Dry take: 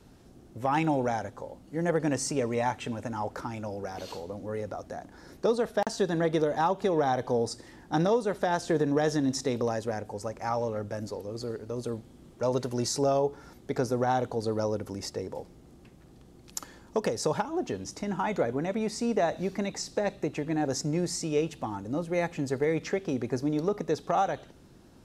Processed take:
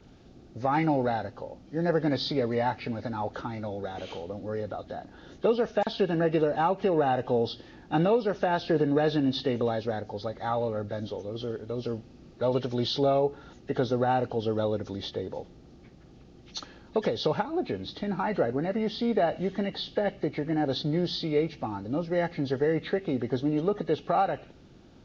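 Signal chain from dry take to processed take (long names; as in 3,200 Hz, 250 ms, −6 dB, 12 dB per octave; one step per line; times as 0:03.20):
hearing-aid frequency compression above 1,600 Hz 1.5 to 1
notch filter 1,000 Hz, Q 7.9
level +1.5 dB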